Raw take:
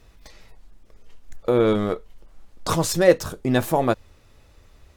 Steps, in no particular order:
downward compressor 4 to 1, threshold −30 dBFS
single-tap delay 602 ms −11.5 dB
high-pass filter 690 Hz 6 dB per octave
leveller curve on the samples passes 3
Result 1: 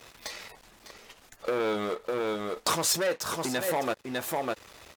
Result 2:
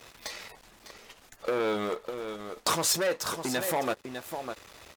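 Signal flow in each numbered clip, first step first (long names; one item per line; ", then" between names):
single-tap delay, then downward compressor, then leveller curve on the samples, then high-pass filter
downward compressor, then single-tap delay, then leveller curve on the samples, then high-pass filter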